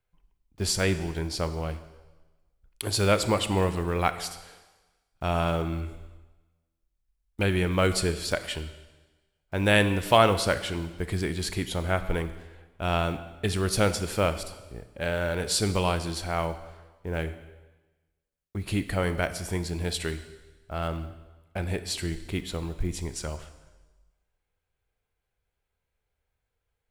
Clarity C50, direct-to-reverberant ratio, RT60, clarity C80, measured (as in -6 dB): 12.5 dB, 11.0 dB, 1.2 s, 14.0 dB